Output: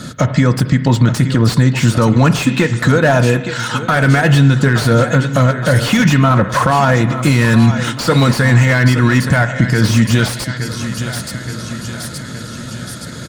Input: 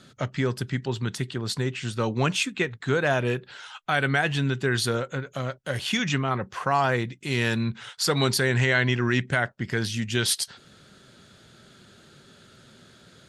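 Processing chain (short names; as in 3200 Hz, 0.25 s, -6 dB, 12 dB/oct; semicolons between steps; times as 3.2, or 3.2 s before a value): bell 600 Hz -5 dB 2 oct; harmonic-percussive split harmonic -3 dB; bell 2900 Hz -9.5 dB 1.2 oct; compressor, threshold -32 dBFS, peak gain reduction 9.5 dB; transient shaper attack -1 dB, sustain -6 dB; notch comb 390 Hz; feedback echo 0.87 s, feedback 57%, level -15 dB; spring tank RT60 1 s, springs 31/43 ms, chirp 45 ms, DRR 13.5 dB; maximiser +30 dB; slew limiter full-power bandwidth 480 Hz; gain -1 dB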